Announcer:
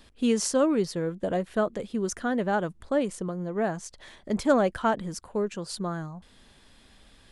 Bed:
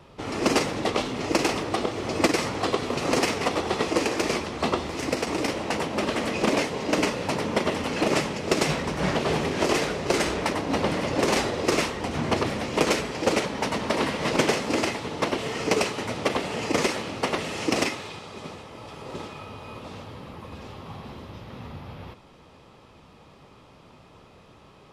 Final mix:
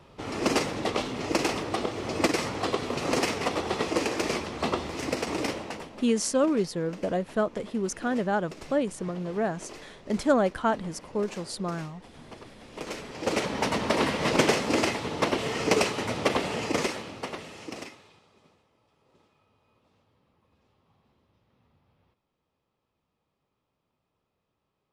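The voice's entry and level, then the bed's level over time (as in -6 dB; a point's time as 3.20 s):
5.80 s, -0.5 dB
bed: 5.50 s -3 dB
6.11 s -21.5 dB
12.55 s -21.5 dB
13.52 s 0 dB
16.48 s 0 dB
18.88 s -28.5 dB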